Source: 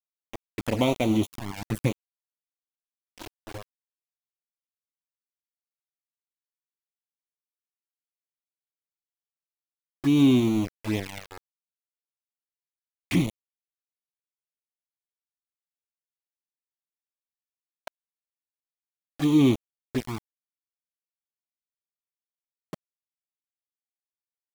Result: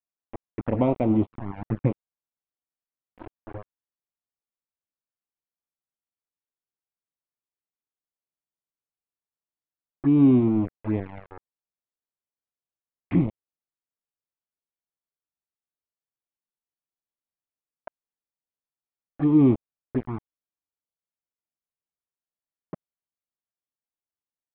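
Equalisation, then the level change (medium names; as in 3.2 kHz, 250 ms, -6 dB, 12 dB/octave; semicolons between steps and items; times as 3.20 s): low-pass 1.5 kHz 12 dB/octave; distance through air 440 m; +2.5 dB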